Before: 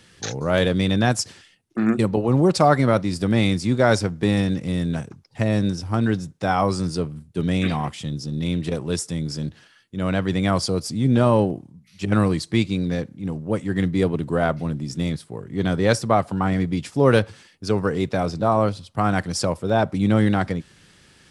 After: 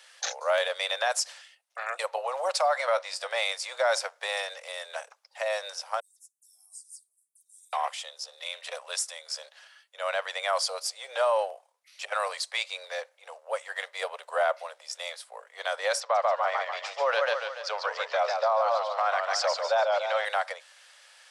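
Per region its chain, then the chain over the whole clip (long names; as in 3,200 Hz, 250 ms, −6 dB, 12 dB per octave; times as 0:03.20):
0:02.73–0:03.35: low-pass filter 9,100 Hz + double-tracking delay 16 ms −13 dB
0:06.00–0:07.73: inverse Chebyshev band-stop filter 270–3,000 Hz, stop band 60 dB + all-pass dispersion lows, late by 103 ms, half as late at 2,900 Hz
0:08.35–0:09.37: low-shelf EQ 330 Hz −11.5 dB + notch filter 870 Hz, Q 20
0:16.00–0:20.25: low-pass filter 6,000 Hz 24 dB per octave + feedback echo with a swinging delay time 143 ms, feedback 49%, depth 138 cents, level −5 dB
whole clip: Butterworth high-pass 540 Hz 72 dB per octave; brickwall limiter −16.5 dBFS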